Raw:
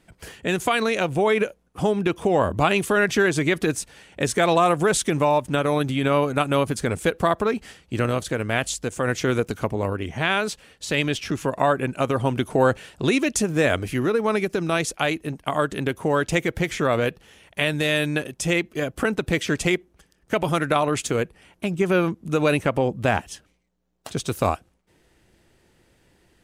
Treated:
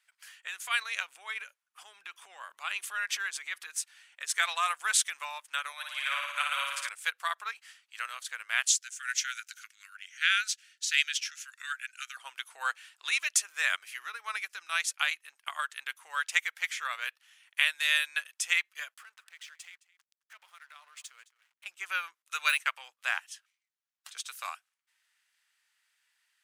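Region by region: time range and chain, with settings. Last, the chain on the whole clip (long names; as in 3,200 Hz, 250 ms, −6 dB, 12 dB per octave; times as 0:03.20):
0:00.42–0:04.36: parametric band 160 Hz +12.5 dB 2.2 octaves + downward compressor 10 to 1, threshold −14 dBFS
0:05.72–0:06.89: Chebyshev high-pass with heavy ripple 540 Hz, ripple 3 dB + notch filter 810 Hz, Q 5.8 + flutter between parallel walls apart 9.8 metres, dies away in 1.5 s
0:08.67–0:12.17: Chebyshev band-stop filter 230–1,400 Hz, order 4 + parametric band 6,200 Hz +8 dB 0.7 octaves
0:18.94–0:21.66: downward compressor 5 to 1, threshold −33 dBFS + slack as between gear wheels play −43 dBFS + single-tap delay 215 ms −19 dB
0:22.22–0:23.05: de-essing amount 55% + downward expander −28 dBFS + tilt shelving filter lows −4.5 dB, about 860 Hz
whole clip: high-pass filter 1,300 Hz 24 dB per octave; expander for the loud parts 1.5 to 1, over −38 dBFS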